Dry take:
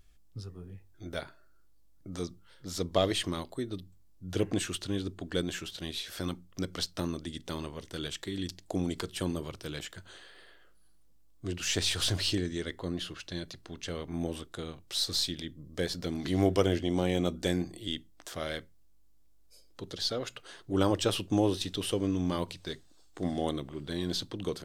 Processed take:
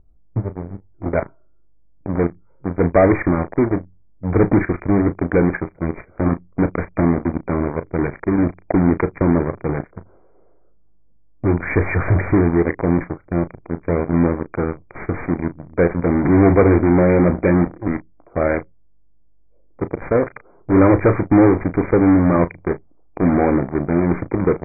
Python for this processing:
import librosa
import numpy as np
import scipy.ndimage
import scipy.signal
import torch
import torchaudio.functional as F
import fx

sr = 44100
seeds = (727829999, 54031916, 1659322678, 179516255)

p1 = fx.wiener(x, sr, points=25)
p2 = fx.env_lowpass(p1, sr, base_hz=1000.0, full_db=-26.5)
p3 = fx.fuzz(p2, sr, gain_db=37.0, gate_db=-42.0)
p4 = p2 + F.gain(torch.from_numpy(p3), -7.0).numpy()
p5 = fx.brickwall_lowpass(p4, sr, high_hz=2400.0)
p6 = fx.doubler(p5, sr, ms=35.0, db=-12.5)
y = F.gain(torch.from_numpy(p6), 7.0).numpy()